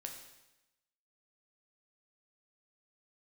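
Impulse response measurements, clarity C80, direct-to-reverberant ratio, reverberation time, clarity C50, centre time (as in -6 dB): 8.0 dB, 2.0 dB, 0.95 s, 6.0 dB, 30 ms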